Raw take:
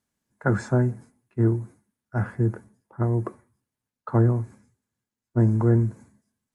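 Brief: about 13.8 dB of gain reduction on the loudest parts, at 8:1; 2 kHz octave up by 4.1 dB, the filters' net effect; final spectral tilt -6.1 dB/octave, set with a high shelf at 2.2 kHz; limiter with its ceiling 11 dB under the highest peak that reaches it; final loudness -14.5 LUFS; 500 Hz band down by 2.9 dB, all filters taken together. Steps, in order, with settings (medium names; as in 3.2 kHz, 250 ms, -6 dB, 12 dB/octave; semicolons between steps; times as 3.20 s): peaking EQ 500 Hz -5 dB; peaking EQ 2 kHz +3 dB; treble shelf 2.2 kHz +7.5 dB; compression 8:1, threshold -30 dBFS; trim +27 dB; peak limiter -4 dBFS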